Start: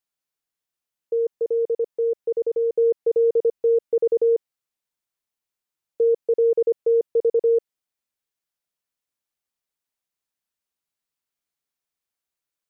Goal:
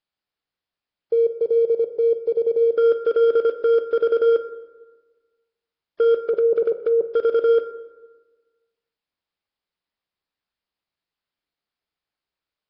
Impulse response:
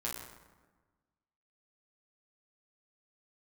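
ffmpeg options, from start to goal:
-filter_complex "[0:a]asettb=1/sr,asplit=3[a][b][c];[a]atrim=end=6.174[d];[b]atrim=start=6.17:end=7.02,asetpts=PTS-STARTPTS,afade=t=in:d=0.004:c=qsin,afade=t=out:st=0.846:d=0.004:c=qsin,aecho=1:1:5.3:0.42,atrim=end_sample=37485[e];[c]atrim=start=7.016[f];[d][e]acrossfade=d=0.004:c1=hsin:c2=qsin[g];[g][f]acrossfade=d=0.004:c1=qsin:c2=hsin,asoftclip=type=hard:threshold=-18dB,asplit=2[h][i];[1:a]atrim=start_sample=2205[j];[i][j]afir=irnorm=-1:irlink=0,volume=-7.5dB[k];[h][k]amix=inputs=2:normalize=0,volume=1.5dB" -ar 11025 -c:a nellymoser

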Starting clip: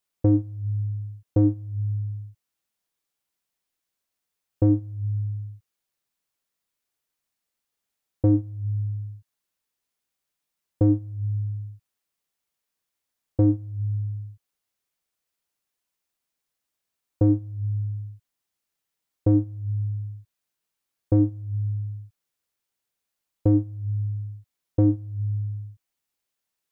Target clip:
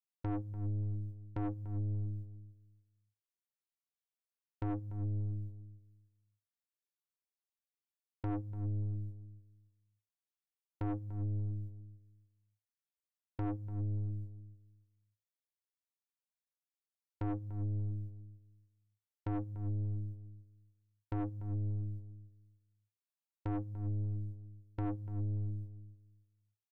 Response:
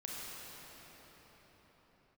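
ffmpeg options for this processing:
-filter_complex "[0:a]agate=range=-14dB:threshold=-36dB:ratio=16:detection=peak,acompressor=threshold=-24dB:ratio=2,aeval=exprs='(tanh(28.2*val(0)+0.35)-tanh(0.35))/28.2':c=same,asplit=2[a][b];[b]adelay=292,lowpass=f=1.2k:p=1,volume=-12.5dB,asplit=2[c][d];[d]adelay=292,lowpass=f=1.2k:p=1,volume=0.21,asplit=2[e][f];[f]adelay=292,lowpass=f=1.2k:p=1,volume=0.21[g];[c][e][g]amix=inputs=3:normalize=0[h];[a][h]amix=inputs=2:normalize=0,volume=-4dB"

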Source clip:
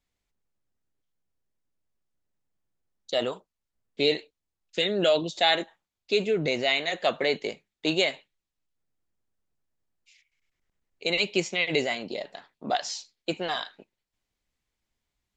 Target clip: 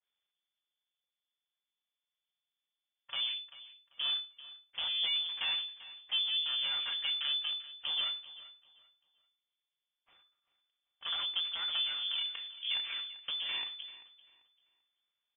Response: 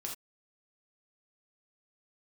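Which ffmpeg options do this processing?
-filter_complex "[0:a]highpass=f=87:w=0.5412,highpass=f=87:w=1.3066,lowshelf=f=390:g=5.5,aecho=1:1:4.8:0.48,acompressor=threshold=-34dB:ratio=4,aeval=exprs='max(val(0),0)':c=same,flanger=delay=4.9:depth=3.7:regen=67:speed=0.17:shape=sinusoidal,acrusher=samples=7:mix=1:aa=0.000001,aecho=1:1:391|782|1173:0.15|0.0449|0.0135,asplit=2[a][b];[1:a]atrim=start_sample=2205,asetrate=34839,aresample=44100[c];[b][c]afir=irnorm=-1:irlink=0,volume=-16.5dB[d];[a][d]amix=inputs=2:normalize=0,lowpass=f=3k:t=q:w=0.5098,lowpass=f=3k:t=q:w=0.6013,lowpass=f=3k:t=q:w=0.9,lowpass=f=3k:t=q:w=2.563,afreqshift=-3500,adynamicequalizer=threshold=0.00158:dfrequency=1600:dqfactor=0.7:tfrequency=1600:tqfactor=0.7:attack=5:release=100:ratio=0.375:range=3.5:mode=boostabove:tftype=highshelf,volume=-1dB"

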